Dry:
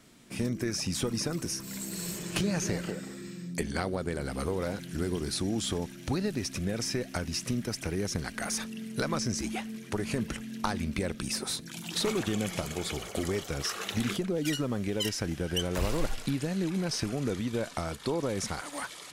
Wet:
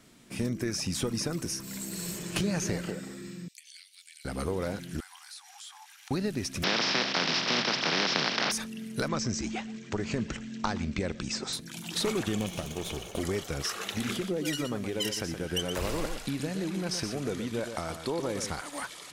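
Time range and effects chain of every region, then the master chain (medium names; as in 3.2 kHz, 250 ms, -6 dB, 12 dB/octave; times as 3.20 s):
3.48–4.25 s: steep high-pass 2.4 kHz + compression 12:1, threshold -45 dBFS
5.00–6.11 s: brick-wall FIR high-pass 730 Hz + compression 2.5:1, threshold -48 dBFS
6.62–8.51 s: spectral contrast reduction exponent 0.23 + Chebyshev band-pass 140–5400 Hz, order 5 + level flattener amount 70%
9.08–11.53 s: steep low-pass 8 kHz 96 dB/octave + delay 121 ms -21 dB
12.39–13.20 s: comb filter that takes the minimum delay 0.32 ms + treble shelf 10 kHz -4.5 dB + band-stop 2 kHz
13.90–18.50 s: bass shelf 190 Hz -6.5 dB + delay 120 ms -8 dB
whole clip: none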